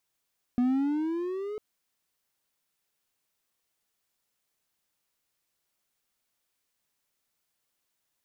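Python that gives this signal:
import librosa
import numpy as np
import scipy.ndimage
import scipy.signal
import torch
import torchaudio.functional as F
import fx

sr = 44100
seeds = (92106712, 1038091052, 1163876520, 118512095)

y = fx.riser_tone(sr, length_s=1.0, level_db=-19, wave='triangle', hz=242.0, rise_st=10.0, swell_db=-12)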